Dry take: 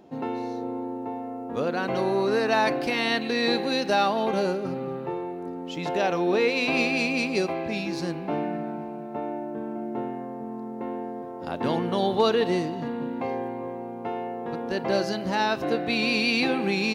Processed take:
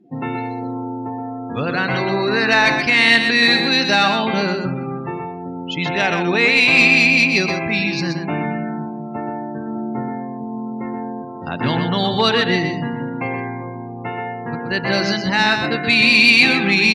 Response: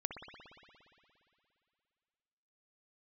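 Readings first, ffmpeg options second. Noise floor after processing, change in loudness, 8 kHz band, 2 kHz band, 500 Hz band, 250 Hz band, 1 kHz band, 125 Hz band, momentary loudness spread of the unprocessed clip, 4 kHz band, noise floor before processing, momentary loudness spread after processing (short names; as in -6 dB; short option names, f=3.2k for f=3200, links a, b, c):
-30 dBFS, +11.0 dB, +9.5 dB, +15.0 dB, +2.5 dB, +6.5 dB, +6.0 dB, +11.0 dB, 12 LU, +13.0 dB, -36 dBFS, 17 LU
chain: -filter_complex "[0:a]afftdn=nr=29:nf=-43,equalizer=f=125:t=o:w=1:g=10,equalizer=f=500:t=o:w=1:g=-5,equalizer=f=2k:t=o:w=1:g=11,equalizer=f=4k:t=o:w=1:g=5,equalizer=f=8k:t=o:w=1:g=7,acontrast=41,asplit=2[a][b];[b]aecho=0:1:126:0.473[c];[a][c]amix=inputs=2:normalize=0,volume=-1dB"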